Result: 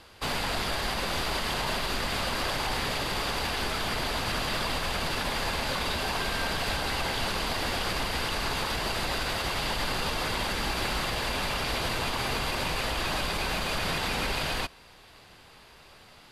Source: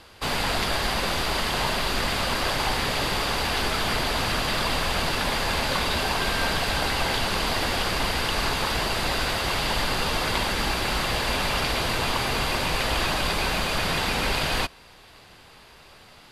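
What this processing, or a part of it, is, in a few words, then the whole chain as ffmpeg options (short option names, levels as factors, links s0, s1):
clipper into limiter: -af "asoftclip=type=hard:threshold=0.224,alimiter=limit=0.141:level=0:latency=1:release=48,volume=0.708"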